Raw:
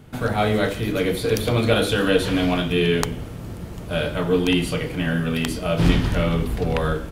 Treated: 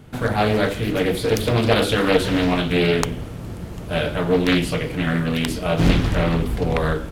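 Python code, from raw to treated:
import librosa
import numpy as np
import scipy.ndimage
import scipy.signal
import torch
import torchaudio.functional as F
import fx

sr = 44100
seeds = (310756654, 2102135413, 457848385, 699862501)

y = fx.doppler_dist(x, sr, depth_ms=0.81)
y = F.gain(torch.from_numpy(y), 1.5).numpy()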